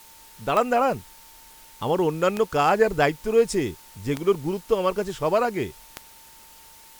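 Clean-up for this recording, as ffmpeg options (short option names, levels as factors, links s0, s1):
-af "adeclick=t=4,bandreject=f=900:w=30,afftdn=nr=19:nf=-49"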